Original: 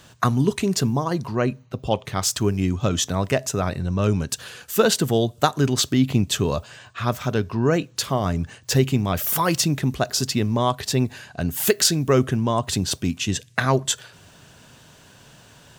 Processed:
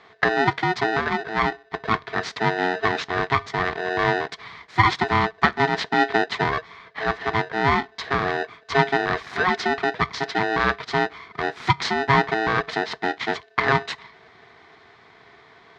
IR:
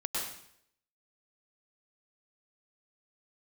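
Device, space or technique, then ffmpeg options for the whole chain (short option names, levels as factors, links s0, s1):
ring modulator pedal into a guitar cabinet: -af "aeval=exprs='val(0)*sgn(sin(2*PI*550*n/s))':c=same,highpass=85,equalizer=f=300:t=q:w=4:g=-4,equalizer=f=570:t=q:w=4:g=-8,equalizer=f=1100:t=q:w=4:g=3,equalizer=f=1900:t=q:w=4:g=6,equalizer=f=2800:t=q:w=4:g=-9,lowpass=f=3800:w=0.5412,lowpass=f=3800:w=1.3066"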